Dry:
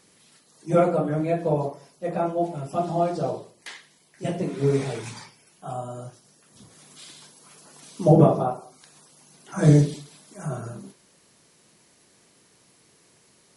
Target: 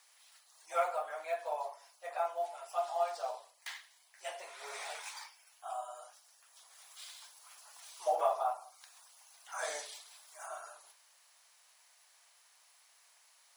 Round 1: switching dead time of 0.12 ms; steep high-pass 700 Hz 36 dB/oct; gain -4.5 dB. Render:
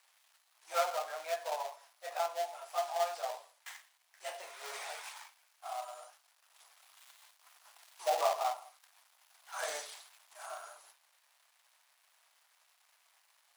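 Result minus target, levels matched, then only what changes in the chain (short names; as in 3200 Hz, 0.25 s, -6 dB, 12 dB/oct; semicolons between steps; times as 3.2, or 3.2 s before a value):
switching dead time: distortion +16 dB
change: switching dead time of 0.025 ms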